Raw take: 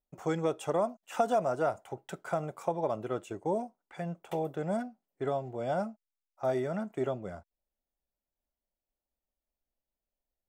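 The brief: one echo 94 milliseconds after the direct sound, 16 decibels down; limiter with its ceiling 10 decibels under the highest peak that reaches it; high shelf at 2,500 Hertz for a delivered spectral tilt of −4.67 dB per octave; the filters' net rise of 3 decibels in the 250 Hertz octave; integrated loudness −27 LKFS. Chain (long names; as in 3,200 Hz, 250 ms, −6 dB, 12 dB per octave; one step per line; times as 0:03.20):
parametric band 250 Hz +4 dB
high-shelf EQ 2,500 Hz +6 dB
brickwall limiter −22.5 dBFS
single-tap delay 94 ms −16 dB
level +7.5 dB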